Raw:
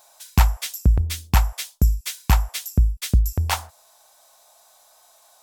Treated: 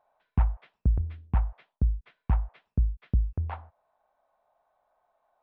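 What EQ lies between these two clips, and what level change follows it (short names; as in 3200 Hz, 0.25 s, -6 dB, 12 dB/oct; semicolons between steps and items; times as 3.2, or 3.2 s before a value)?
air absorption 480 m; tape spacing loss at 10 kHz 41 dB; -7.0 dB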